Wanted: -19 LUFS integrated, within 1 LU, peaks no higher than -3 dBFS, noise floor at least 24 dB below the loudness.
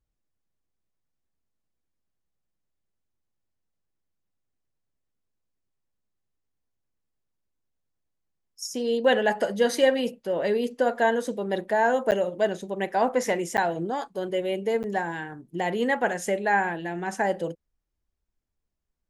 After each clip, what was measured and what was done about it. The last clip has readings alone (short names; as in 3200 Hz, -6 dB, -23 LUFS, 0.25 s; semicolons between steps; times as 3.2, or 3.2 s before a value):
dropouts 3; longest dropout 9.1 ms; loudness -26.0 LUFS; peak -9.0 dBFS; loudness target -19.0 LUFS
-> interpolate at 12.11/13.57/14.83, 9.1 ms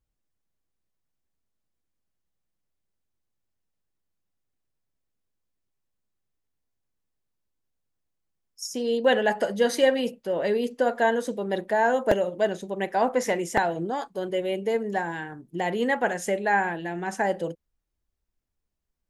dropouts 0; loudness -25.5 LUFS; peak -5.0 dBFS; loudness target -19.0 LUFS
-> gain +6.5 dB; limiter -3 dBFS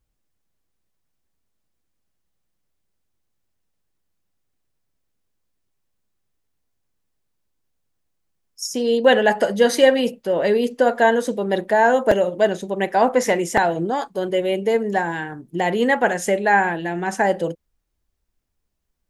loudness -19.5 LUFS; peak -3.0 dBFS; noise floor -74 dBFS